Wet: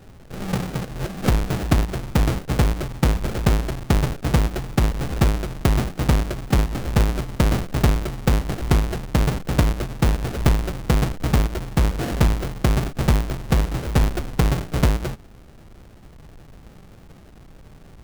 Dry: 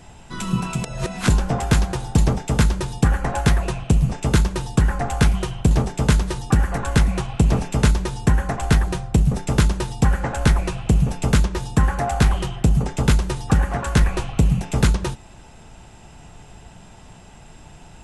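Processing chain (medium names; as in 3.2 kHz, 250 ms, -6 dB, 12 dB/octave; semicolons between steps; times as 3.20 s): square wave that keeps the level; sample-rate reducer 1 kHz, jitter 20%; trim -6.5 dB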